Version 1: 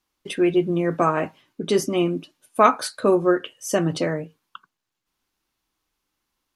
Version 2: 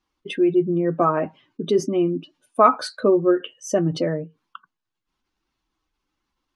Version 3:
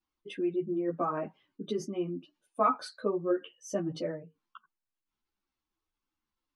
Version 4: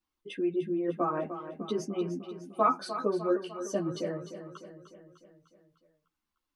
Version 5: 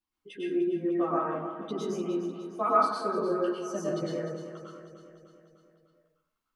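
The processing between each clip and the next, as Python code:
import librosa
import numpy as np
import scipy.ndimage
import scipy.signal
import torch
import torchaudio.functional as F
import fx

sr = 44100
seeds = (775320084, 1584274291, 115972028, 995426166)

y1 = fx.spec_expand(x, sr, power=1.5)
y1 = scipy.signal.sosfilt(scipy.signal.bessel(2, 5900.0, 'lowpass', norm='mag', fs=sr, output='sos'), y1)
y1 = F.gain(torch.from_numpy(y1), 1.0).numpy()
y2 = fx.ensemble(y1, sr)
y2 = F.gain(torch.from_numpy(y2), -8.5).numpy()
y3 = fx.echo_feedback(y2, sr, ms=301, feedback_pct=57, wet_db=-11)
y3 = F.gain(torch.from_numpy(y3), 1.0).numpy()
y4 = fx.rev_plate(y3, sr, seeds[0], rt60_s=0.66, hf_ratio=0.55, predelay_ms=90, drr_db=-5.0)
y4 = F.gain(torch.from_numpy(y4), -5.0).numpy()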